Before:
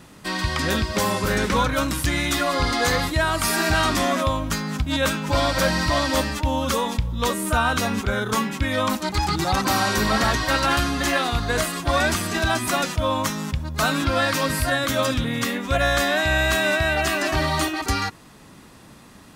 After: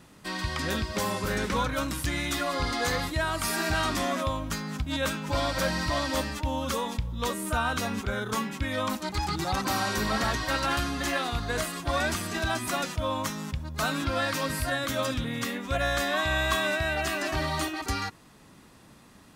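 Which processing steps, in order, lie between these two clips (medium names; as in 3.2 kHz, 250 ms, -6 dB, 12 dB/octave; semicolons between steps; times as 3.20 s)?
16.13–16.67 s: small resonant body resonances 1.1/3.4 kHz, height 15 dB; trim -7 dB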